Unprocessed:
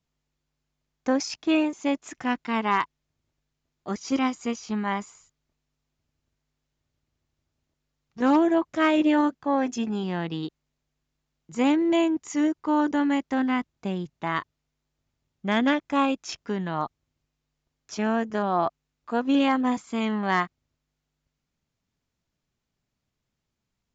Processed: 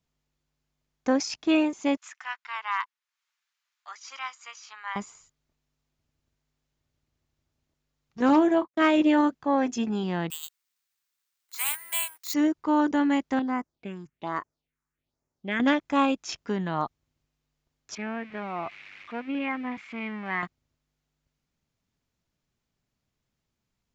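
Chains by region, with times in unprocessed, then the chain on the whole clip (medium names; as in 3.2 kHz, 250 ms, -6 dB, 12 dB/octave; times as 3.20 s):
1.97–4.96 s: high-pass 1.1 kHz 24 dB/octave + treble shelf 2.7 kHz -8.5 dB + tape noise reduction on one side only encoder only
8.29–8.82 s: gate -33 dBFS, range -49 dB + doubling 29 ms -13 dB
10.30–12.34 s: inverse Chebyshev high-pass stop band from 260 Hz, stop band 70 dB + careless resampling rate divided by 4×, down none, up zero stuff
13.39–15.60 s: tone controls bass -11 dB, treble -4 dB + phase shifter stages 4, 1.2 Hz, lowest notch 540–3500 Hz
17.95–20.43 s: zero-crossing glitches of -19 dBFS + four-pole ladder low-pass 2.5 kHz, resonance 65% + bass shelf 190 Hz +5 dB
whole clip: none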